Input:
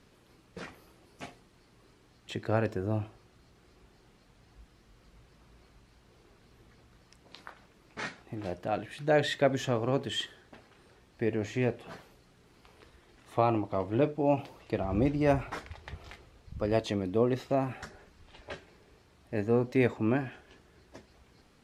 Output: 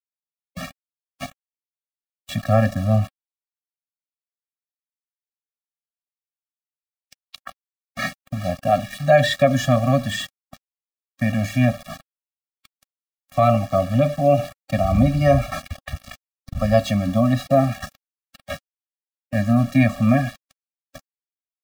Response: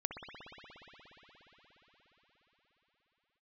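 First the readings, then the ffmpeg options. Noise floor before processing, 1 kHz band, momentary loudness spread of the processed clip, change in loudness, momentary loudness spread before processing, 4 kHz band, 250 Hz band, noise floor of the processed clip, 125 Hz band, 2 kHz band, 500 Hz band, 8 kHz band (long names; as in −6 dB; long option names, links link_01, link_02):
−63 dBFS, +11.0 dB, 18 LU, +10.5 dB, 20 LU, +8.5 dB, +10.5 dB, below −85 dBFS, +14.0 dB, +10.0 dB, +9.0 dB, +12.0 dB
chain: -filter_complex "[0:a]bandreject=frequency=194.4:width_type=h:width=4,bandreject=frequency=388.8:width_type=h:width=4,bandreject=frequency=583.2:width_type=h:width=4,acrossover=split=200|700|4300[link_01][link_02][link_03][link_04];[link_01]crystalizer=i=2.5:c=0[link_05];[link_05][link_02][link_03][link_04]amix=inputs=4:normalize=0,aeval=exprs='val(0)*gte(abs(val(0)),0.00668)':channel_layout=same,alimiter=level_in=15.5dB:limit=-1dB:release=50:level=0:latency=1,afftfilt=real='re*eq(mod(floor(b*sr/1024/270),2),0)':imag='im*eq(mod(floor(b*sr/1024/270),2),0)':win_size=1024:overlap=0.75,volume=-1dB"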